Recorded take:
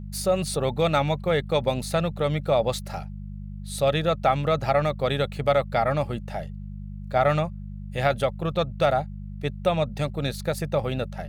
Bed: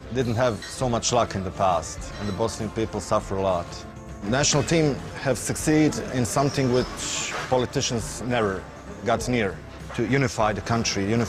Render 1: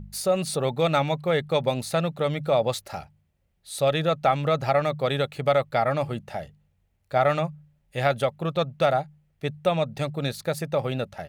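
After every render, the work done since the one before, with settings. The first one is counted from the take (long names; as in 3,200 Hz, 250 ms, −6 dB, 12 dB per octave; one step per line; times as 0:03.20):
hum removal 50 Hz, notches 4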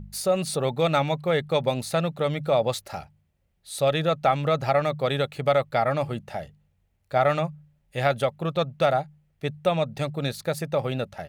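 no processing that can be heard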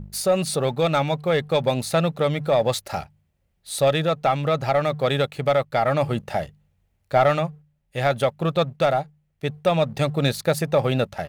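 leveller curve on the samples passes 1
speech leveller within 4 dB 0.5 s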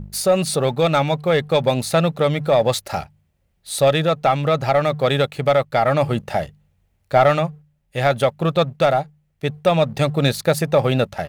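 level +3.5 dB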